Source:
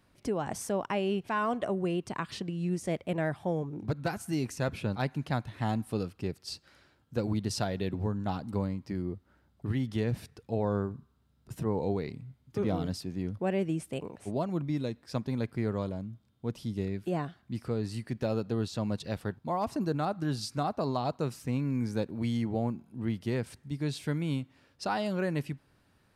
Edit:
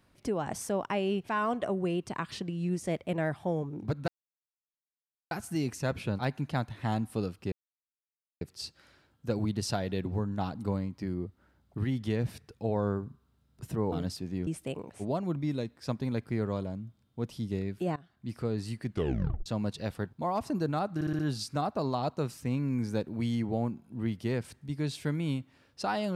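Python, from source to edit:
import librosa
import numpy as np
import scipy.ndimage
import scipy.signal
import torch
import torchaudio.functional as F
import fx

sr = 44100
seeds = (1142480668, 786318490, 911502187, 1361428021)

y = fx.edit(x, sr, fx.insert_silence(at_s=4.08, length_s=1.23),
    fx.insert_silence(at_s=6.29, length_s=0.89),
    fx.cut(start_s=11.8, length_s=0.96),
    fx.cut(start_s=13.31, length_s=0.42),
    fx.fade_in_from(start_s=17.22, length_s=0.41, floor_db=-21.0),
    fx.tape_stop(start_s=18.13, length_s=0.59),
    fx.stutter(start_s=20.21, slice_s=0.06, count=5), tone=tone)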